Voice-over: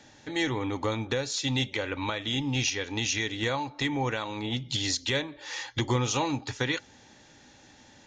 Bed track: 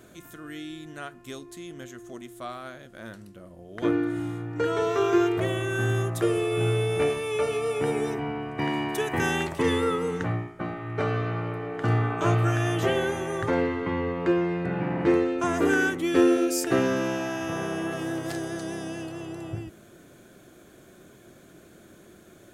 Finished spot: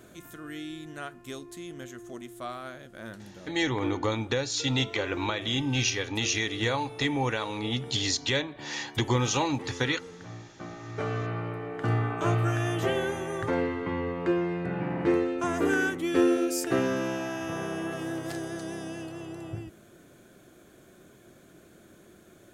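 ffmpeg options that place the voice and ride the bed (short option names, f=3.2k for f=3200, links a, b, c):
-filter_complex "[0:a]adelay=3200,volume=1dB[a];[1:a]volume=13.5dB,afade=t=out:st=3.3:d=0.75:silence=0.149624,afade=t=in:st=10.23:d=1.07:silence=0.199526[b];[a][b]amix=inputs=2:normalize=0"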